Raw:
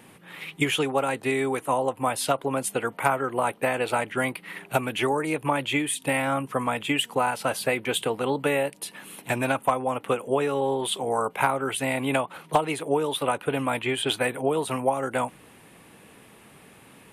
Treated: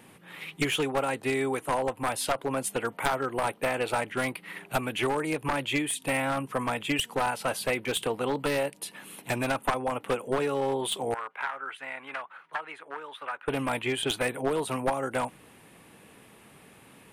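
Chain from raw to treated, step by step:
wavefolder on the positive side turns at −19 dBFS
0:11.14–0:13.48: resonant band-pass 1,500 Hz, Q 2.1
level −2.5 dB

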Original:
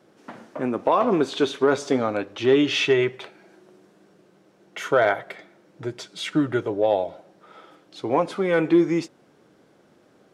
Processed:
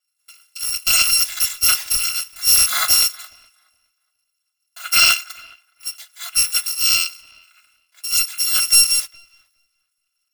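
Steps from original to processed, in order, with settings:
samples in bit-reversed order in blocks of 256 samples
high-pass filter 1,200 Hz 12 dB per octave
mid-hump overdrive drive 11 dB, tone 6,600 Hz, clips at −7 dBFS
on a send: delay with a low-pass on its return 417 ms, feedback 34%, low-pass 3,200 Hz, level −15.5 dB
on the sum: multiband upward and downward expander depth 70%
level +2.5 dB

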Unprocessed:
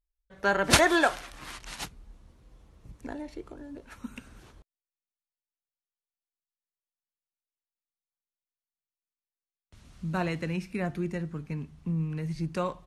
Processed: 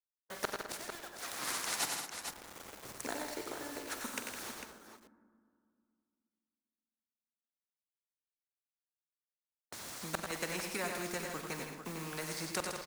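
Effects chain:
spectral magnitudes quantised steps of 15 dB
high-pass filter 410 Hz 12 dB per octave
parametric band 2,900 Hz −10.5 dB 0.71 octaves
in parallel at −2.5 dB: downward compressor, threshold −37 dBFS, peak gain reduction 17 dB
on the sum: transient designer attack +2 dB, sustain −5 dB
gate with flip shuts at −18 dBFS, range −35 dB
bit reduction 10 bits
multi-tap delay 45/93/108/160/210/450 ms −17/−9/−11.5/−13.5/−20/−15 dB
on a send at −18.5 dB: convolution reverb RT60 2.3 s, pre-delay 7 ms
on the sum: every bin compressed towards the loudest bin 2 to 1

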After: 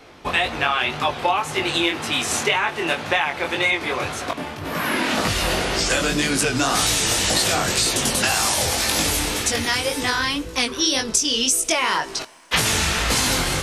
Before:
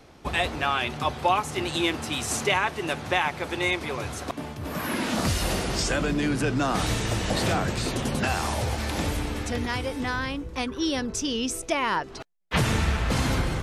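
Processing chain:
bass and treble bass −6 dB, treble −12 dB, from 0:05.89 treble +3 dB
coupled-rooms reverb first 0.32 s, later 3.1 s, from −18 dB, DRR 17.5 dB
chorus effect 1.9 Hz, delay 18 ms, depth 5.9 ms
high-shelf EQ 2,400 Hz +11 dB
downward compressor, threshold −25 dBFS, peak gain reduction 7.5 dB
level +9 dB

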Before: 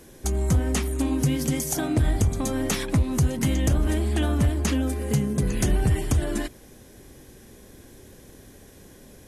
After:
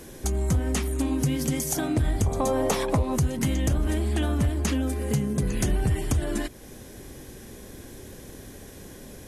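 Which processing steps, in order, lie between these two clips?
0:02.26–0:03.16: flat-topped bell 690 Hz +10.5 dB
downward compressor 1.5 to 1, threshold −39 dBFS, peak gain reduction 8.5 dB
level +5 dB

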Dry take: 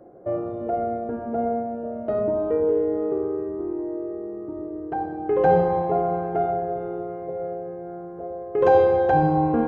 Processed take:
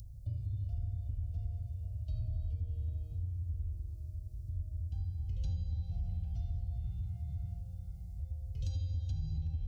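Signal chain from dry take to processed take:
inverse Chebyshev band-stop filter 210–1,900 Hz, stop band 50 dB
in parallel at −3 dB: upward compression, threshold −48 dBFS
0:06.84–0:07.60: on the sum: octave-band graphic EQ 125/250/500/1,000/2,000 Hz +3/+9/−10/+8/+6 dB
downward compressor 12 to 1, threshold −43 dBFS, peak gain reduction 11.5 dB
soft clipping −39.5 dBFS, distortion −22 dB
low-shelf EQ 180 Hz +10 dB
on a send: delay with a band-pass on its return 799 ms, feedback 36%, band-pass 1,100 Hz, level −6 dB
on the sum: level +4.5 dB

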